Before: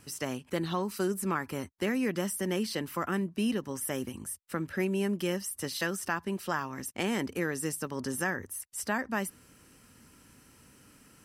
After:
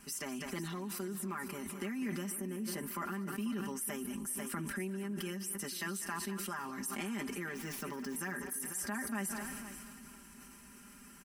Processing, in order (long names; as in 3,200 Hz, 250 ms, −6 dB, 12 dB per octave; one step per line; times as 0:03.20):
0:07.51–0:08.16: running median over 5 samples
comb filter 5 ms, depth 94%
downward compressor 4 to 1, threshold −38 dBFS, peak gain reduction 14.5 dB
octave-band graphic EQ 125/250/500/4,000 Hz −12/+5/−10/−6 dB
feedback echo with a high-pass in the loop 201 ms, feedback 37%, high-pass 360 Hz, level −14 dB
0:00.81–0:01.33: surface crackle 18 per second → 53 per second −46 dBFS
0:02.32–0:02.91: parametric band 3,800 Hz −11 dB 2 octaves
repeating echo 494 ms, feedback 37%, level −15 dB
level that may fall only so fast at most 21 dB per second
level +1 dB